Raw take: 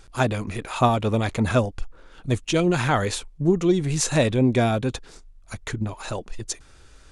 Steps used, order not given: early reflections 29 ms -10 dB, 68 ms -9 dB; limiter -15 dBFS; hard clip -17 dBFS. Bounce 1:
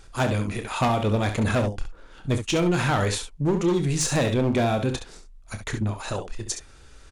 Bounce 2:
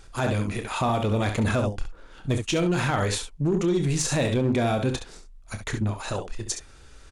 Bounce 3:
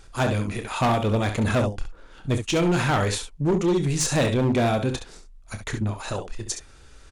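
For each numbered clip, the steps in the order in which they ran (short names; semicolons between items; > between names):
hard clip > early reflections > limiter; early reflections > limiter > hard clip; early reflections > hard clip > limiter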